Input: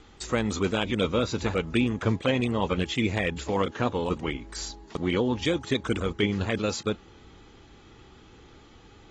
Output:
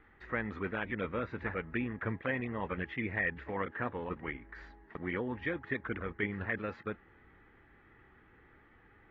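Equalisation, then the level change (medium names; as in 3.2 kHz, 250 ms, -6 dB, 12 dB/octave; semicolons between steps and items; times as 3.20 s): four-pole ladder low-pass 2 kHz, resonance 70%; 0.0 dB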